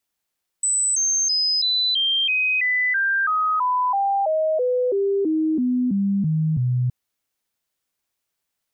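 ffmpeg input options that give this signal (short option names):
-f lavfi -i "aevalsrc='0.133*clip(min(mod(t,0.33),0.33-mod(t,0.33))/0.005,0,1)*sin(2*PI*7990*pow(2,-floor(t/0.33)/3)*mod(t,0.33))':d=6.27:s=44100"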